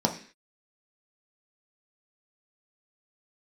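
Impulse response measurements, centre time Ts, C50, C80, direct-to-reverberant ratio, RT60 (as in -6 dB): 13 ms, 11.0 dB, 15.5 dB, 1.5 dB, 0.45 s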